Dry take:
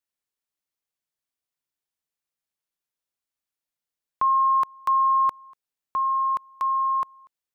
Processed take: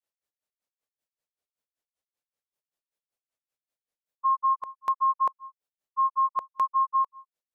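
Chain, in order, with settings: dynamic bell 750 Hz, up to +5 dB, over -37 dBFS, Q 1.4; granulator 140 ms, grains 5.2 per s, spray 20 ms, pitch spread up and down by 0 st; harmonic-percussive split harmonic +5 dB; peak limiter -20 dBFS, peak gain reduction 11 dB; peaking EQ 540 Hz +8.5 dB 0.99 oct

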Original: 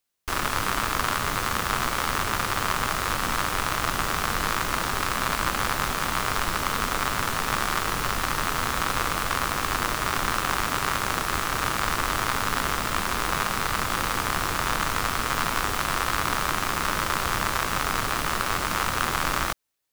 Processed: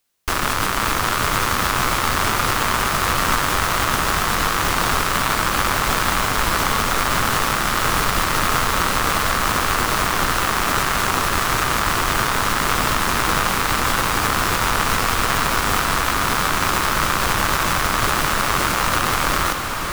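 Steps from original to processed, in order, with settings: peak limiter -14 dBFS, peak gain reduction 7.5 dB; on a send: echo that smears into a reverb 547 ms, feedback 69%, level -7 dB; on the sum: trim +8.5 dB

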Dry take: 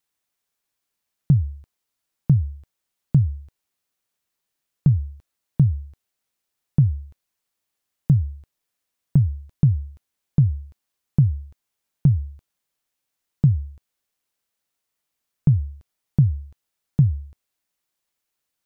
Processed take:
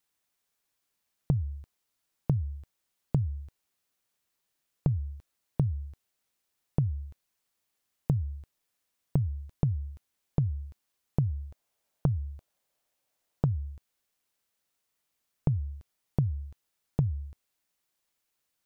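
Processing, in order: 11.30–13.46 s: peaking EQ 620 Hz +8.5 dB 0.92 oct; compression 6:1, threshold -24 dBFS, peak gain reduction 12 dB

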